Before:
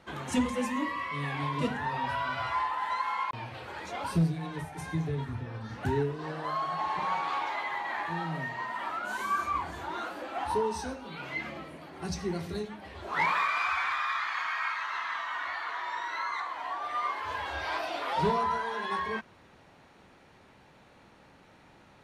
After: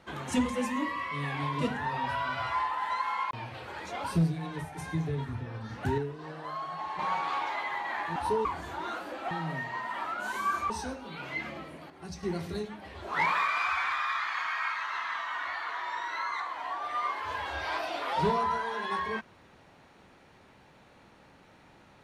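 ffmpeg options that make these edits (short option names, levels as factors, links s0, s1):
-filter_complex "[0:a]asplit=9[s0][s1][s2][s3][s4][s5][s6][s7][s8];[s0]atrim=end=5.982[s9];[s1]atrim=start=5.978:end=6.992,asetpts=PTS-STARTPTS,volume=0.562[s10];[s2]atrim=start=6.988:end=8.162[s11];[s3]atrim=start=10.408:end=10.702[s12];[s4]atrim=start=9.548:end=10.412[s13];[s5]atrim=start=8.158:end=9.552[s14];[s6]atrim=start=10.698:end=11.902[s15];[s7]atrim=start=11.898:end=12.232,asetpts=PTS-STARTPTS,volume=0.447[s16];[s8]atrim=start=12.228[s17];[s9][s10]acrossfade=d=0.004:c1=hsin:c2=hsin[s18];[s18][s11]acrossfade=d=0.004:c1=hsin:c2=hsin[s19];[s19][s12]acrossfade=d=0.004:c1=hsin:c2=hsin[s20];[s20][s13]acrossfade=d=0.004:c1=hsin:c2=hsin[s21];[s21][s14]acrossfade=d=0.004:c1=hsin:c2=hsin[s22];[s22][s15]acrossfade=d=0.004:c1=hsin:c2=hsin[s23];[s23][s16]acrossfade=d=0.004:c1=hsin:c2=hsin[s24];[s24][s17]acrossfade=d=0.004:c1=hsin:c2=hsin"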